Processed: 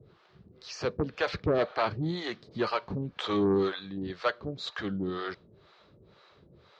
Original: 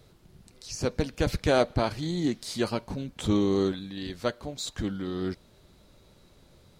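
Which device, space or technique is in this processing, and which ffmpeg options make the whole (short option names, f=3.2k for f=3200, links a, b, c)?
guitar amplifier with harmonic tremolo: -filter_complex "[0:a]acrossover=split=500[a][b];[a]aeval=exprs='val(0)*(1-1/2+1/2*cos(2*PI*2*n/s))':c=same[c];[b]aeval=exprs='val(0)*(1-1/2-1/2*cos(2*PI*2*n/s))':c=same[d];[c][d]amix=inputs=2:normalize=0,asoftclip=type=tanh:threshold=-25dB,highpass=93,equalizer=f=250:t=q:w=4:g=-6,equalizer=f=420:t=q:w=4:g=4,equalizer=f=1.2k:t=q:w=4:g=7,equalizer=f=1.7k:t=q:w=4:g=4,lowpass=f=4.4k:w=0.5412,lowpass=f=4.4k:w=1.3066,volume=5dB"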